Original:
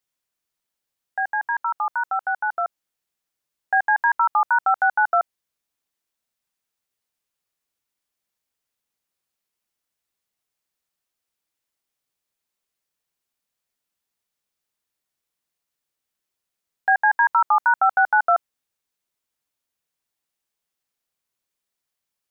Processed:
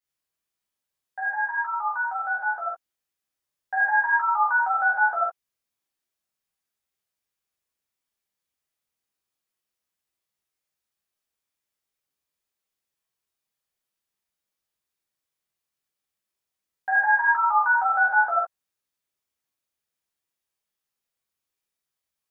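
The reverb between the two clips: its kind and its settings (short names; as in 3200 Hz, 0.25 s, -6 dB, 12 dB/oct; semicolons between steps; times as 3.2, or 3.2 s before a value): non-linear reverb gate 0.11 s flat, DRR -8 dB; gain -11 dB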